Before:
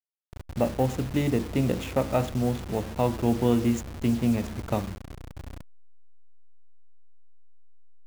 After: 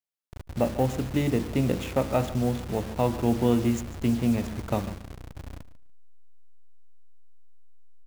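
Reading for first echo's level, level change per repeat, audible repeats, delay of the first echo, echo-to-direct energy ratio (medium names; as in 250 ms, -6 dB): -16.0 dB, -16.5 dB, 2, 145 ms, -16.0 dB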